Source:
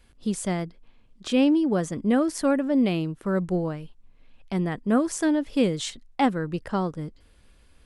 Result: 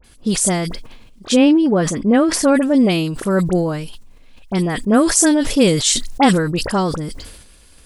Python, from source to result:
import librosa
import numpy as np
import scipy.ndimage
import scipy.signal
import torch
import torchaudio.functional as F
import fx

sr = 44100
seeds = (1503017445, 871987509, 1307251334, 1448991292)

y = fx.bass_treble(x, sr, bass_db=-2, treble_db=fx.steps((0.0, 9.0), (1.3, -3.0), (2.5, 11.0)))
y = fx.dispersion(y, sr, late='highs', ms=44.0, hz=2000.0)
y = fx.sustainer(y, sr, db_per_s=50.0)
y = F.gain(torch.from_numpy(y), 8.5).numpy()